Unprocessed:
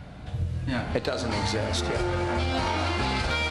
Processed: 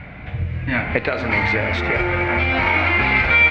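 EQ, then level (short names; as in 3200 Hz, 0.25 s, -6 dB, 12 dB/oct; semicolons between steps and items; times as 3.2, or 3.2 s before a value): synth low-pass 2200 Hz, resonance Q 5.8; +5.0 dB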